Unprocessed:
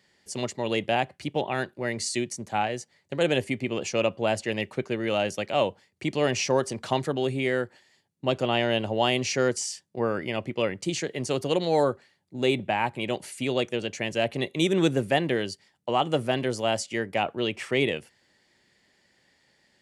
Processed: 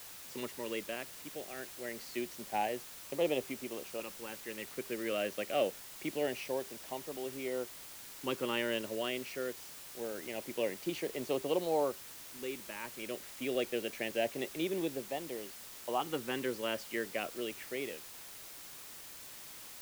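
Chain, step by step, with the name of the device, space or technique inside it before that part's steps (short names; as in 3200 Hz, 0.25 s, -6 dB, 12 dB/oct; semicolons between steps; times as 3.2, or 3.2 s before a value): shortwave radio (BPF 270–2700 Hz; tremolo 0.36 Hz, depth 67%; LFO notch saw up 0.25 Hz 610–1900 Hz; white noise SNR 11 dB); gain -4.5 dB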